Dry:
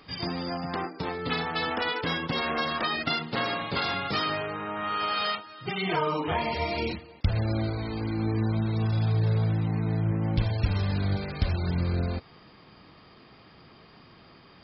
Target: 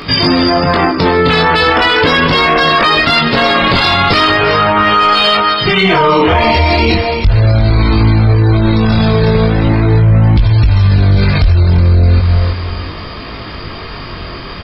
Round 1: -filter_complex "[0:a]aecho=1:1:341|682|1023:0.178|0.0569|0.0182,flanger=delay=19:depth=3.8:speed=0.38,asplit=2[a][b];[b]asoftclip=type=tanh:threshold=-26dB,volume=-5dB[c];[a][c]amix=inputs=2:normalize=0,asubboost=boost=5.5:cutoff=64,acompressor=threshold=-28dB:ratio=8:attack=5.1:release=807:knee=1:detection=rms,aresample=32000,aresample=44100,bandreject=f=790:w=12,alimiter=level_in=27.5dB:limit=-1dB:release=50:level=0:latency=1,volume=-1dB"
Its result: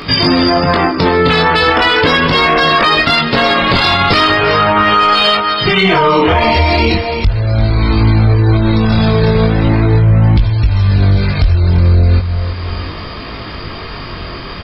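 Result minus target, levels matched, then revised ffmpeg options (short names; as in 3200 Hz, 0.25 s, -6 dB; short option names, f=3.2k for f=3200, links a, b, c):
compressor: peak gain reduction +6.5 dB
-filter_complex "[0:a]aecho=1:1:341|682|1023:0.178|0.0569|0.0182,flanger=delay=19:depth=3.8:speed=0.38,asplit=2[a][b];[b]asoftclip=type=tanh:threshold=-26dB,volume=-5dB[c];[a][c]amix=inputs=2:normalize=0,asubboost=boost=5.5:cutoff=64,acompressor=threshold=-20.5dB:ratio=8:attack=5.1:release=807:knee=1:detection=rms,aresample=32000,aresample=44100,bandreject=f=790:w=12,alimiter=level_in=27.5dB:limit=-1dB:release=50:level=0:latency=1,volume=-1dB"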